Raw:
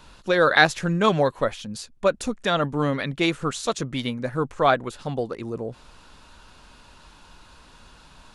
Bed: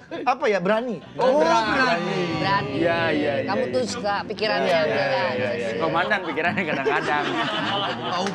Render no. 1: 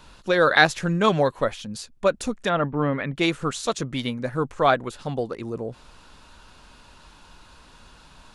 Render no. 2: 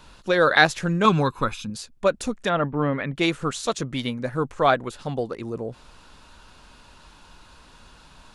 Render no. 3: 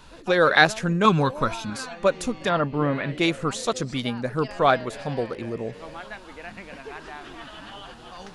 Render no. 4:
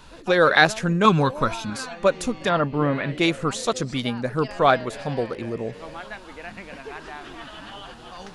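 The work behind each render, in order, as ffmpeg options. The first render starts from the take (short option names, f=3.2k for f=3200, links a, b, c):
-filter_complex "[0:a]asplit=3[a][b][c];[a]afade=t=out:st=2.48:d=0.02[d];[b]lowpass=f=2.6k:w=0.5412,lowpass=f=2.6k:w=1.3066,afade=t=in:st=2.48:d=0.02,afade=t=out:st=3.15:d=0.02[e];[c]afade=t=in:st=3.15:d=0.02[f];[d][e][f]amix=inputs=3:normalize=0"
-filter_complex "[0:a]asettb=1/sr,asplit=3[a][b][c];[a]atrim=end=1.054[d];[b]atrim=start=1.05:end=1.7,asetpts=PTS-STARTPTS,afade=t=in:d=0.004:c=qsin,afade=t=out:st=0.646:d=0.004:c=qsin,aecho=1:1:0.8:0.75,atrim=end_sample=28665[e];[c]atrim=start=1.696[f];[d][e]acrossfade=d=0.004:c1=hsin:c2=qsin[g];[g][f]acrossfade=d=0.004:c1=qsin:c2=hsin"
-filter_complex "[1:a]volume=-17dB[a];[0:a][a]amix=inputs=2:normalize=0"
-af "volume=1.5dB,alimiter=limit=-3dB:level=0:latency=1"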